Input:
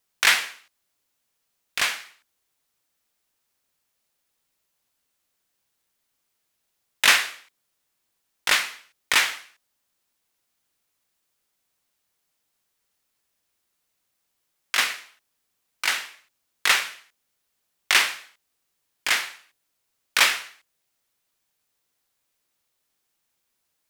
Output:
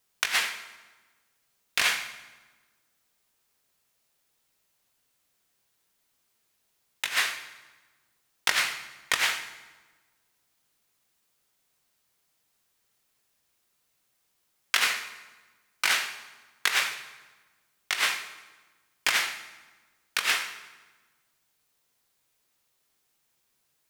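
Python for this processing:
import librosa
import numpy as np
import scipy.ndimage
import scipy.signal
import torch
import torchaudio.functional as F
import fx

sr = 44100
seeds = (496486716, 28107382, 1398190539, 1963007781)

y = fx.over_compress(x, sr, threshold_db=-23.0, ratio=-0.5)
y = fx.rev_fdn(y, sr, rt60_s=1.3, lf_ratio=1.3, hf_ratio=0.8, size_ms=44.0, drr_db=8.0)
y = F.gain(torch.from_numpy(y), -1.5).numpy()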